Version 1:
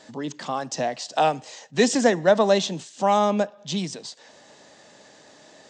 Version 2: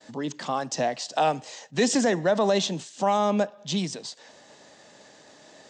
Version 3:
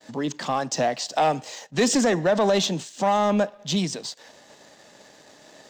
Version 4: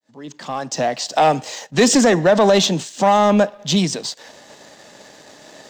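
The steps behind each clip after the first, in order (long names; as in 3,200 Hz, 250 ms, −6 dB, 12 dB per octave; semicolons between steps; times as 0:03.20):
downward expander −49 dBFS; brickwall limiter −13 dBFS, peak gain reduction 7.5 dB
leveller curve on the samples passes 1
fade in at the beginning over 1.33 s; level +7 dB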